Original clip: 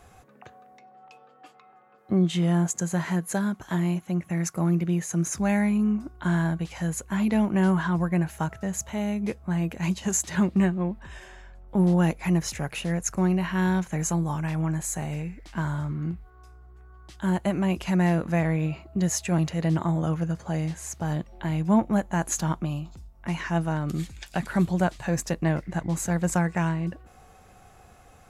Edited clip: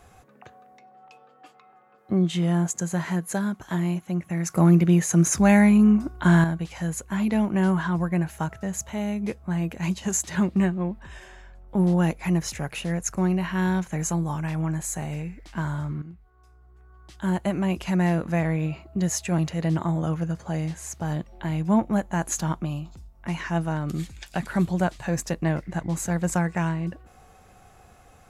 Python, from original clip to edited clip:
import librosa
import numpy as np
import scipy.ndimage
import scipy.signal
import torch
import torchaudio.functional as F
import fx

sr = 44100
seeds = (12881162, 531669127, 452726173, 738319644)

y = fx.edit(x, sr, fx.clip_gain(start_s=4.5, length_s=1.94, db=7.0),
    fx.fade_in_from(start_s=16.02, length_s=1.23, floor_db=-13.5), tone=tone)